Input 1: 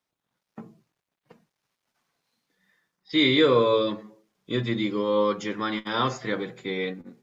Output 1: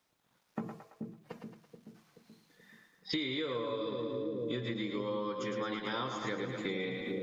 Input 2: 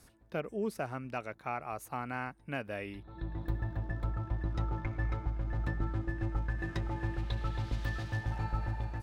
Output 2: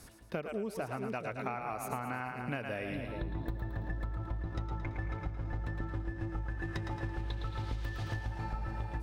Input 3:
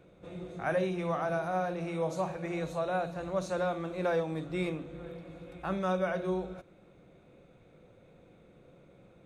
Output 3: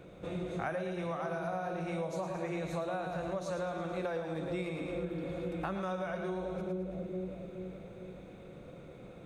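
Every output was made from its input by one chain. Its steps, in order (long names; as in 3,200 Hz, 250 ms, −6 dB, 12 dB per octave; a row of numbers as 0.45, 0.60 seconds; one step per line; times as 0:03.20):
on a send: echo with a time of its own for lows and highs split 510 Hz, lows 429 ms, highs 111 ms, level −6.5 dB
on the sum: downward compressor 20 to 1, threshold −39 dBFS
level +6.5 dB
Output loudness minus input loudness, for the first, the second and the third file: −12.5, −1.5, −4.0 LU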